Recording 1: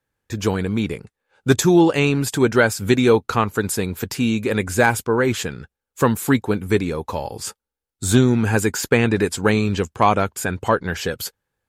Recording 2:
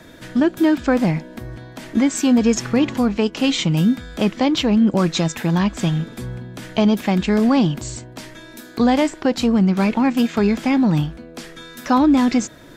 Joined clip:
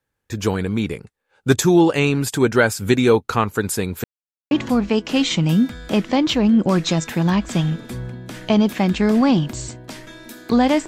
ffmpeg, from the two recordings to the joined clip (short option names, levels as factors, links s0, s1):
-filter_complex "[0:a]apad=whole_dur=10.87,atrim=end=10.87,asplit=2[s0][s1];[s0]atrim=end=4.04,asetpts=PTS-STARTPTS,afade=t=out:st=4.036:d=0.004:c=hsin[s2];[s1]atrim=start=4.04:end=4.51,asetpts=PTS-STARTPTS,volume=0[s3];[1:a]atrim=start=2.79:end=9.15,asetpts=PTS-STARTPTS,afade=t=in:d=0.004:c=hsin[s4];[s2][s3][s4]concat=n=3:v=0:a=1"